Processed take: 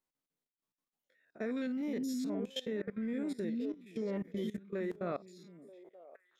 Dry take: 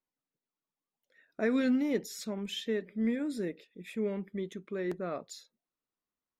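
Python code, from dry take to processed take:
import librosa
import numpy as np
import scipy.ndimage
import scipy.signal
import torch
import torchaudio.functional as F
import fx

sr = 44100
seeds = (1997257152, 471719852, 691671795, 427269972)

y = fx.spec_steps(x, sr, hold_ms=50)
y = fx.echo_stepped(y, sr, ms=466, hz=230.0, octaves=1.4, feedback_pct=70, wet_db=-4.0)
y = fx.level_steps(y, sr, step_db=19)
y = F.gain(torch.from_numpy(y), 2.5).numpy()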